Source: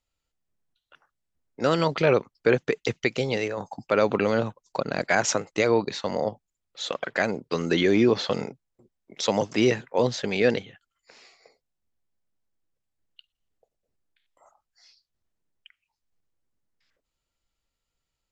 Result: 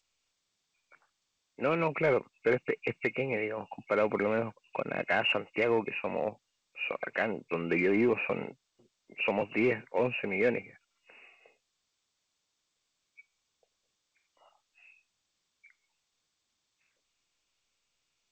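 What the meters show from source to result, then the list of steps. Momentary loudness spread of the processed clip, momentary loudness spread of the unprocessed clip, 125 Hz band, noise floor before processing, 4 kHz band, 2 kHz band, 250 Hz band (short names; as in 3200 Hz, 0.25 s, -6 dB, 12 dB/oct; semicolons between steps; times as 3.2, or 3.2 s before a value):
9 LU, 10 LU, -9.0 dB, -84 dBFS, -9.0 dB, -3.0 dB, -7.0 dB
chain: nonlinear frequency compression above 2100 Hz 4:1; low shelf 110 Hz -9 dB; in parallel at -11 dB: wavefolder -18 dBFS; on the sum: gain -7 dB; G.722 64 kbps 16000 Hz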